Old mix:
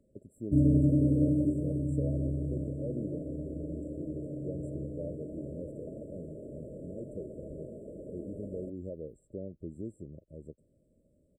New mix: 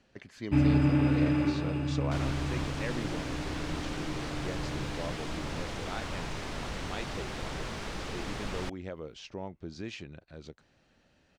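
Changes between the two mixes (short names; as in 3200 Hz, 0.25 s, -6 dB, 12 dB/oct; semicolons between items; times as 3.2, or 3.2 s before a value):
second sound: remove band-pass 580 Hz, Q 0.58; master: remove brick-wall FIR band-stop 650–7400 Hz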